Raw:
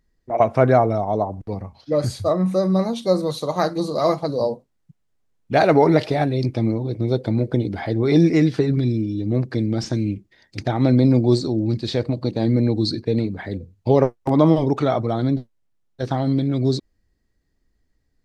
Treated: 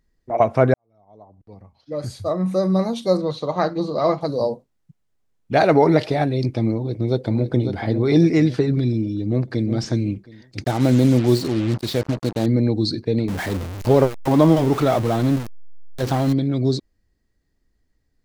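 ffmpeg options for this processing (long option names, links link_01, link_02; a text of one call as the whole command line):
ffmpeg -i in.wav -filter_complex "[0:a]asettb=1/sr,asplit=3[link_01][link_02][link_03];[link_01]atrim=end=3.174[link_04];[link_02]atrim=start=3.17:end=4.21,asetpts=PTS-STARTPTS,afade=type=in:duration=0.004:curve=qsin,afade=type=out:start_time=1.036:duration=0.004:curve=qsin,lowpass=3900[link_05];[link_03]atrim=start=4.206[link_06];[link_04][link_05]acrossfade=duration=0.004:curve1=hsin:curve2=qsin[link_07];[link_07][link_06]acrossfade=duration=0.004:curve1=qsin:curve2=hsin,asplit=2[link_08][link_09];[link_09]afade=type=in:start_time=6.76:duration=0.01,afade=type=out:start_time=7.52:duration=0.01,aecho=0:1:550|1100|1650|2200|2750:0.398107|0.159243|0.0636971|0.0254789|0.0101915[link_10];[link_08][link_10]amix=inputs=2:normalize=0,asplit=2[link_11][link_12];[link_12]afade=type=in:start_time=9.29:duration=0.01,afade=type=out:start_time=9.69:duration=0.01,aecho=0:1:360|720|1080:0.316228|0.0790569|0.0197642[link_13];[link_11][link_13]amix=inputs=2:normalize=0,asettb=1/sr,asplit=3[link_14][link_15][link_16];[link_14]atrim=end=10.644[link_17];[link_15]atrim=start=10.64:end=12.46,asetpts=PTS-STARTPTS,afade=type=in:duration=0.004:curve=qsin,afade=type=out:start_time=1.816:duration=0.004:curve=qsin,acrusher=bits=4:mix=0:aa=0.5[link_18];[link_16]atrim=start=12.456[link_19];[link_17][link_18]acrossfade=duration=0.004:curve1=hsin:curve2=qsin[link_20];[link_20][link_19]acrossfade=duration=0.004:curve1=qsin:curve2=hsin,asettb=1/sr,asplit=3[link_21][link_22][link_23];[link_21]atrim=end=13.284[link_24];[link_22]atrim=start=13.28:end=16.33,asetpts=PTS-STARTPTS,afade=type=in:duration=0.004:curve=qsin,afade=type=out:start_time=3.046:duration=0.004:curve=qsin,aeval=exprs='val(0)+0.5*0.0562*sgn(val(0))':channel_layout=same[link_25];[link_23]atrim=start=16.326[link_26];[link_24][link_25]acrossfade=duration=0.004:curve1=hsin:curve2=qsin[link_27];[link_27][link_26]acrossfade=duration=0.004:curve1=qsin:curve2=hsin,asplit=2[link_28][link_29];[link_28]atrim=end=0.74,asetpts=PTS-STARTPTS,afade=type=out:start_time=0.736:duration=0.004:curve=hsin[link_30];[link_29]atrim=start=0.74,asetpts=PTS-STARTPTS,afade=type=in:duration=1.89:curve=qua[link_31];[link_30][link_31]concat=n=2:v=0:a=1" out.wav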